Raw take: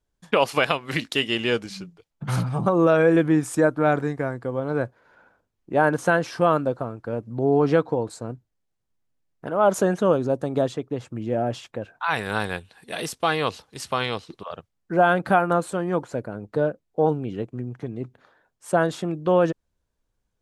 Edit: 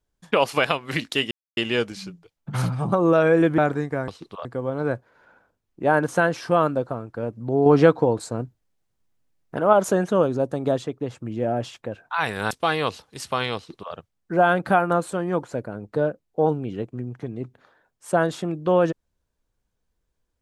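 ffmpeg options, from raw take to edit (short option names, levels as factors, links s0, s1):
-filter_complex "[0:a]asplit=8[s0][s1][s2][s3][s4][s5][s6][s7];[s0]atrim=end=1.31,asetpts=PTS-STARTPTS,afade=t=out:st=1.306:d=0.004:c=hsin,apad=pad_dur=0.26[s8];[s1]atrim=start=1.31:end=3.322,asetpts=PTS-STARTPTS,afade=t=in:d=0.004:c=hsin[s9];[s2]atrim=start=3.848:end=4.352[s10];[s3]atrim=start=14.158:end=14.532[s11];[s4]atrim=start=4.348:end=7.562[s12];[s5]atrim=start=7.558:end=9.632,asetpts=PTS-STARTPTS,volume=1.68[s13];[s6]atrim=start=9.628:end=12.412[s14];[s7]atrim=start=13.108[s15];[s8][s9]concat=n=2:v=0:a=1[s16];[s16][s10]acrossfade=d=0.004:c1=hsin:c2=hsin[s17];[s17][s11]acrossfade=d=0.004:c1=hsin:c2=hsin[s18];[s18][s12]acrossfade=d=0.004:c1=hsin:c2=hsin[s19];[s19][s13]acrossfade=d=0.004:c1=hsin:c2=hsin[s20];[s20][s14]acrossfade=d=0.004:c1=hsin:c2=hsin[s21];[s21][s15]acrossfade=d=0.004:c1=hsin:c2=hsin"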